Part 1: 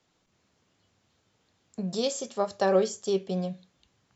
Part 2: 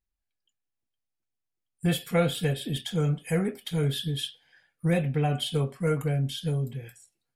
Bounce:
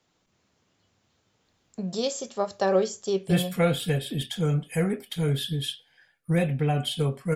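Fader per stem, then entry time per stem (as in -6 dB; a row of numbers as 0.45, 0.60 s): +0.5, +1.0 dB; 0.00, 1.45 s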